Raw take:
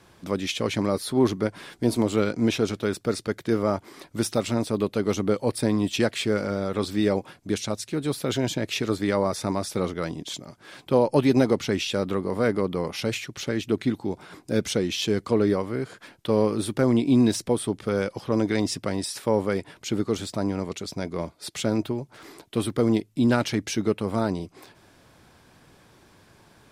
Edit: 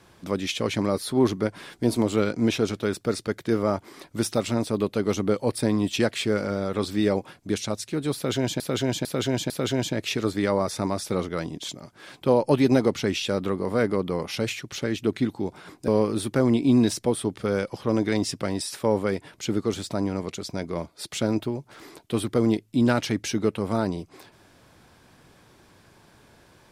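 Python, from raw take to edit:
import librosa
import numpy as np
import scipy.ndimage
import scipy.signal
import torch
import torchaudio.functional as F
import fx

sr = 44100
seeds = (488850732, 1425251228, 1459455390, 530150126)

y = fx.edit(x, sr, fx.repeat(start_s=8.15, length_s=0.45, count=4),
    fx.cut(start_s=14.53, length_s=1.78), tone=tone)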